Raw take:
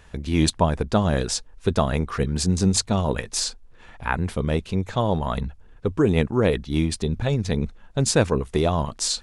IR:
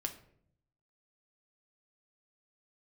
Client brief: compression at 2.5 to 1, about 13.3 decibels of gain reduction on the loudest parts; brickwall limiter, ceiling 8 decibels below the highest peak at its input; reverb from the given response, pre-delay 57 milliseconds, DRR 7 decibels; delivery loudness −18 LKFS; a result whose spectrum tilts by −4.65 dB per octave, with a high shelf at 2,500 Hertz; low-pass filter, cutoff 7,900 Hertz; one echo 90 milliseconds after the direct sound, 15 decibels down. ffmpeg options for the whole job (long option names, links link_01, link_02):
-filter_complex "[0:a]lowpass=7900,highshelf=frequency=2500:gain=3.5,acompressor=threshold=-35dB:ratio=2.5,alimiter=limit=-24dB:level=0:latency=1,aecho=1:1:90:0.178,asplit=2[link_01][link_02];[1:a]atrim=start_sample=2205,adelay=57[link_03];[link_02][link_03]afir=irnorm=-1:irlink=0,volume=-7dB[link_04];[link_01][link_04]amix=inputs=2:normalize=0,volume=17dB"